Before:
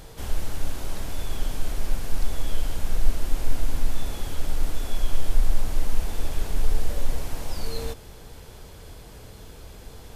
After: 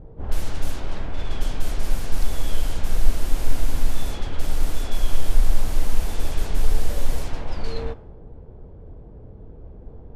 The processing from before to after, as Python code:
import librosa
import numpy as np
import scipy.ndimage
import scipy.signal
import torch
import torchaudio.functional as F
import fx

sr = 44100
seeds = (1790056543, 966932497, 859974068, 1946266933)

y = fx.quant_float(x, sr, bits=6, at=(3.43, 4.87))
y = fx.env_lowpass(y, sr, base_hz=410.0, full_db=-15.0)
y = F.gain(torch.from_numpy(y), 3.0).numpy()